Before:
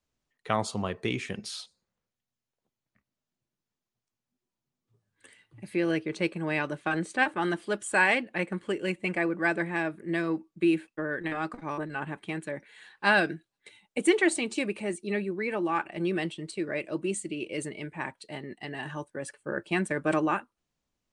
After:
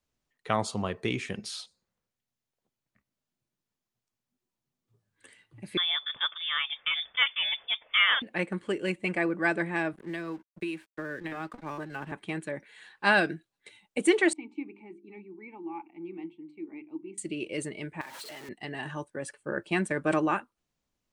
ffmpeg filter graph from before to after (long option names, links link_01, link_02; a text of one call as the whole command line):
ffmpeg -i in.wav -filter_complex "[0:a]asettb=1/sr,asplit=3[link_01][link_02][link_03];[link_01]atrim=end=5.774[link_04];[link_02]atrim=start=5.77:end=8.22,asetpts=PTS-STARTPTS,afade=type=in:duration=0.004:curve=qsin,afade=type=out:start_time=2.446:duration=0.004:curve=qsin,highpass=310,lowpass=frequency=3200:width_type=q:width=0.5098,lowpass=frequency=3200:width_type=q:width=0.6013,lowpass=frequency=3200:width_type=q:width=0.9,lowpass=frequency=3200:width_type=q:width=2.563,afreqshift=-3800[link_05];[link_03]atrim=start=8.216[link_06];[link_04][link_05]acrossfade=duration=0.004:curve1=hsin:curve2=qsin[link_07];[link_07][link_06]acrossfade=duration=0.004:curve1=qsin:curve2=hsin,asettb=1/sr,asplit=3[link_08][link_09][link_10];[link_08]atrim=end=9.934[link_11];[link_09]atrim=start=9.93:end=12.12,asetpts=PTS-STARTPTS,afade=type=in:duration=0.004:curve=qsin,afade=type=out:start_time=2.186:duration=0.004:curve=qsin,aeval=exprs='sgn(val(0))*max(abs(val(0))-0.00237,0)':channel_layout=same,acrossover=split=340|940[link_12][link_13][link_14];[link_12]acompressor=threshold=-40dB:ratio=4[link_15];[link_13]acompressor=threshold=-41dB:ratio=4[link_16];[link_14]acompressor=threshold=-39dB:ratio=4[link_17];[link_15][link_16][link_17]amix=inputs=3:normalize=0[link_18];[link_10]atrim=start=12.116[link_19];[link_11][link_18]acrossfade=duration=0.004:curve1=hsin:curve2=qsin[link_20];[link_20][link_19]acrossfade=duration=0.004:curve1=qsin:curve2=hsin,asettb=1/sr,asplit=3[link_21][link_22][link_23];[link_21]atrim=end=14.334[link_24];[link_22]atrim=start=14.33:end=17.18,asetpts=PTS-STARTPTS,afade=type=in:duration=0.004:curve=qsin,afade=type=out:start_time=2.846:duration=0.004:curve=qsin,asplit=3[link_25][link_26][link_27];[link_25]bandpass=frequency=300:width_type=q:width=8,volume=0dB[link_28];[link_26]bandpass=frequency=870:width_type=q:width=8,volume=-6dB[link_29];[link_27]bandpass=frequency=2240:width_type=q:width=8,volume=-9dB[link_30];[link_28][link_29][link_30]amix=inputs=3:normalize=0,highshelf=frequency=3200:gain=-10,bandreject=frequency=50:width_type=h:width=6,bandreject=frequency=100:width_type=h:width=6,bandreject=frequency=150:width_type=h:width=6,bandreject=frequency=200:width_type=h:width=6,bandreject=frequency=250:width_type=h:width=6,bandreject=frequency=300:width_type=h:width=6,bandreject=frequency=350:width_type=h:width=6,bandreject=frequency=400:width_type=h:width=6[link_31];[link_23]atrim=start=17.176[link_32];[link_24][link_31]acrossfade=duration=0.004:curve1=hsin:curve2=qsin[link_33];[link_33][link_32]acrossfade=duration=0.004:curve1=qsin:curve2=hsin,asettb=1/sr,asplit=3[link_34][link_35][link_36];[link_34]atrim=end=18.014[link_37];[link_35]atrim=start=18.01:end=18.49,asetpts=PTS-STARTPTS,afade=type=in:duration=0.004:curve=qsin,afade=type=out:start_time=0.476:duration=0.004:curve=qsin,aeval=exprs='val(0)+0.5*0.015*sgn(val(0))':channel_layout=same,highpass=frequency=710:poles=1,acompressor=threshold=-39dB:ratio=6:attack=3.2:release=140:knee=1:detection=peak[link_38];[link_36]atrim=start=18.486[link_39];[link_37][link_38]acrossfade=duration=0.004:curve1=hsin:curve2=qsin[link_40];[link_40][link_39]acrossfade=duration=0.004:curve1=qsin:curve2=hsin" out.wav